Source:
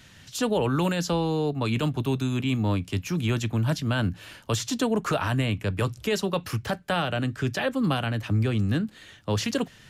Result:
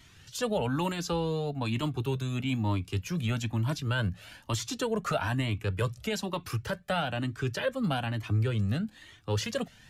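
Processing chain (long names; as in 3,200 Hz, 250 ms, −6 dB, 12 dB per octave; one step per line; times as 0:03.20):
flanger whose copies keep moving one way rising 1.1 Hz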